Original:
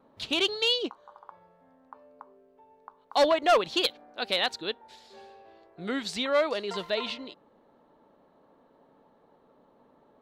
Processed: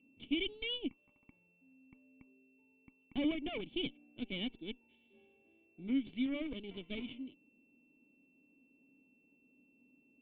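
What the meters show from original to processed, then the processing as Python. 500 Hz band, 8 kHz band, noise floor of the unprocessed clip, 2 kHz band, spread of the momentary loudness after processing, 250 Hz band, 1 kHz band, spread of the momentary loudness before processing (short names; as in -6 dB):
-18.5 dB, under -35 dB, -63 dBFS, -13.0 dB, 12 LU, -0.5 dB, -27.0 dB, 14 LU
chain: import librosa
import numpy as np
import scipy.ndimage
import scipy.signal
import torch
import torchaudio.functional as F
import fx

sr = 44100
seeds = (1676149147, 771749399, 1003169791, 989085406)

y = fx.cheby_harmonics(x, sr, harmonics=(6, 7), levels_db=(-13, -28), full_scale_db=-13.5)
y = y + 10.0 ** (-54.0 / 20.0) * np.sin(2.0 * np.pi * 2700.0 * np.arange(len(y)) / sr)
y = fx.formant_cascade(y, sr, vowel='i')
y = y * librosa.db_to_amplitude(2.0)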